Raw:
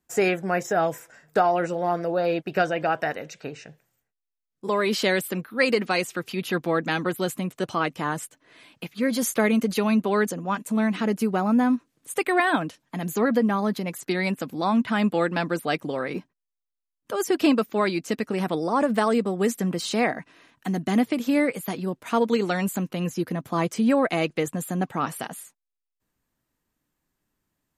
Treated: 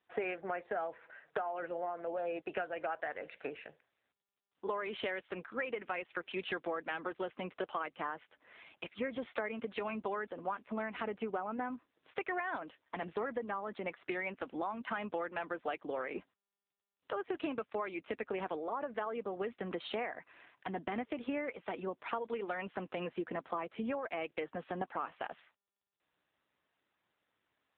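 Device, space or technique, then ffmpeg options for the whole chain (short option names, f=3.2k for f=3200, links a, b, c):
voicemail: -filter_complex "[0:a]asplit=3[a][b][c];[a]afade=t=out:st=12.98:d=0.02[d];[b]highpass=120,afade=t=in:st=12.98:d=0.02,afade=t=out:st=13.53:d=0.02[e];[c]afade=t=in:st=13.53:d=0.02[f];[d][e][f]amix=inputs=3:normalize=0,highpass=440,lowpass=3.1k,acompressor=threshold=-33dB:ratio=10" -ar 8000 -c:a libopencore_amrnb -b:a 7400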